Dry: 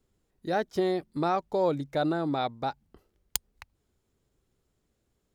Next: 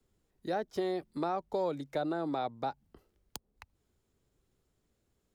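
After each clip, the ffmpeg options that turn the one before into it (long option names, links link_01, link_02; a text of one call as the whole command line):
ffmpeg -i in.wav -filter_complex "[0:a]acrossover=split=110|280|1100[link_01][link_02][link_03][link_04];[link_01]acompressor=threshold=-58dB:ratio=4[link_05];[link_02]acompressor=threshold=-46dB:ratio=4[link_06];[link_03]acompressor=threshold=-29dB:ratio=4[link_07];[link_04]acompressor=threshold=-44dB:ratio=4[link_08];[link_05][link_06][link_07][link_08]amix=inputs=4:normalize=0,volume=-1.5dB" out.wav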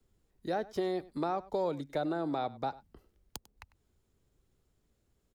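ffmpeg -i in.wav -af "lowshelf=frequency=91:gain=6,aecho=1:1:98:0.1" out.wav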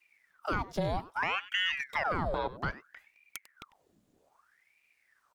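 ffmpeg -i in.wav -filter_complex "[0:a]asplit=2[link_01][link_02];[link_02]alimiter=level_in=5dB:limit=-24dB:level=0:latency=1:release=21,volume=-5dB,volume=0dB[link_03];[link_01][link_03]amix=inputs=2:normalize=0,aeval=exprs='val(0)*sin(2*PI*1300*n/s+1300*0.85/0.62*sin(2*PI*0.62*n/s))':channel_layout=same" out.wav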